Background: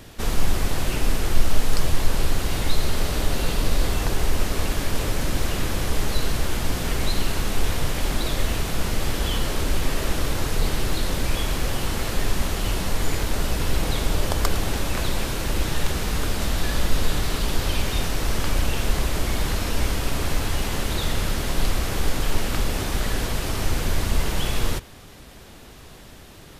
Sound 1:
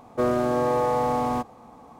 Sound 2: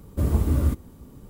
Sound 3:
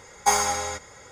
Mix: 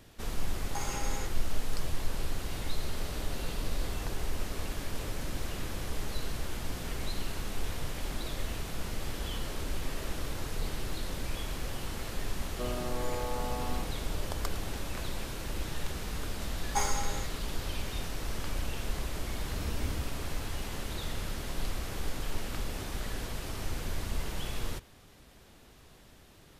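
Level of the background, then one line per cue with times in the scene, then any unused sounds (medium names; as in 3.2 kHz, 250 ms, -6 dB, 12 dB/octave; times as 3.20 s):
background -12 dB
0.49 s: add 3 -10 dB + compression, threshold -25 dBFS
12.41 s: add 1 -14.5 dB
16.49 s: add 3 -11 dB
19.33 s: add 2 -16.5 dB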